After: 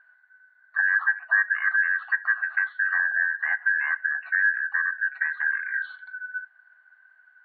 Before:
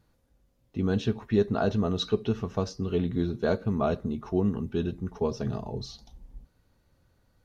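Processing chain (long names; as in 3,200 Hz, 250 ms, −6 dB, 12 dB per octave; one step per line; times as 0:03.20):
band-splitting scrambler in four parts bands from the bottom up 2143
brick-wall band-pass 630–4,500 Hz
treble cut that deepens with the level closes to 1,800 Hz, closed at −25.5 dBFS
high shelf with overshoot 1,800 Hz −10.5 dB, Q 3
level +7.5 dB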